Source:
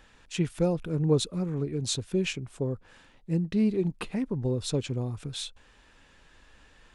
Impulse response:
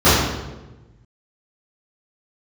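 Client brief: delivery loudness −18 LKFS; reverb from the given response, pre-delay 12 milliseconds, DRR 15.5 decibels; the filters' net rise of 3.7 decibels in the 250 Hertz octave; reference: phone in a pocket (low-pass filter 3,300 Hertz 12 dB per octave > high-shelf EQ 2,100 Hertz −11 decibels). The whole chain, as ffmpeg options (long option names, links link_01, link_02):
-filter_complex "[0:a]equalizer=frequency=250:width_type=o:gain=5.5,asplit=2[link_01][link_02];[1:a]atrim=start_sample=2205,adelay=12[link_03];[link_02][link_03]afir=irnorm=-1:irlink=0,volume=-43dB[link_04];[link_01][link_04]amix=inputs=2:normalize=0,lowpass=3300,highshelf=frequency=2100:gain=-11,volume=9dB"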